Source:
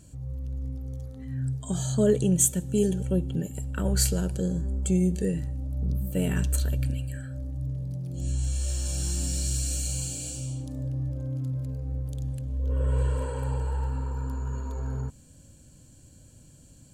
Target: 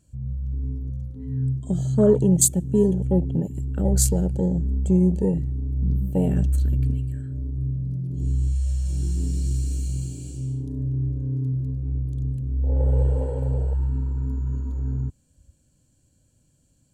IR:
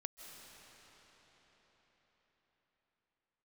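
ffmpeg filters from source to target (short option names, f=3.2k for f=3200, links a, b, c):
-af "acontrast=37,afwtdn=0.0501"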